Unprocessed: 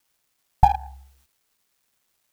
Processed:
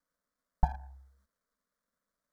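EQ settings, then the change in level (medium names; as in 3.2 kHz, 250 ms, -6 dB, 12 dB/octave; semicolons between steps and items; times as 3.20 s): low-pass 1.2 kHz 6 dB/octave; static phaser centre 540 Hz, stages 8; -3.0 dB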